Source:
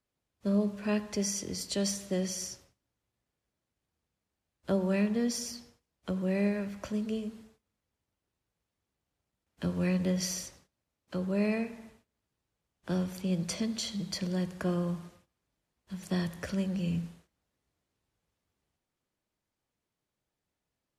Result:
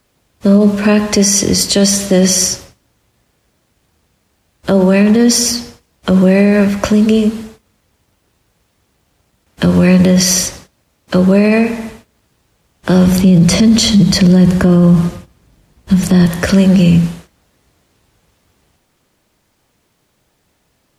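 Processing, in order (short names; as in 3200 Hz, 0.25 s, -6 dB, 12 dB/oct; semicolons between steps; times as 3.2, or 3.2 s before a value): 13.07–16.26 low shelf 290 Hz +10.5 dB; maximiser +26.5 dB; gain -1 dB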